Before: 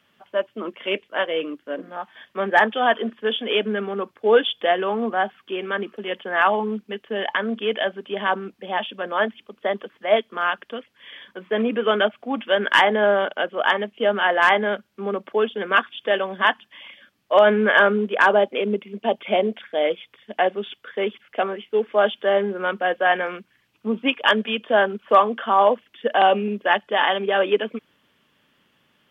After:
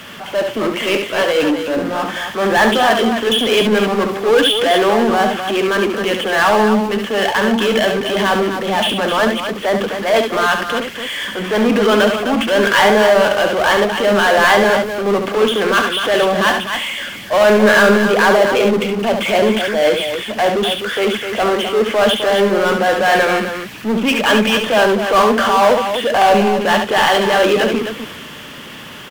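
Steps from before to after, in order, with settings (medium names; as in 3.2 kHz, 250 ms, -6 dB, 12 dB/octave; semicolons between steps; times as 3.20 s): transient shaper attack -6 dB, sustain +4 dB; power-law waveshaper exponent 0.5; loudspeakers at several distances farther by 24 m -6 dB, 88 m -8 dB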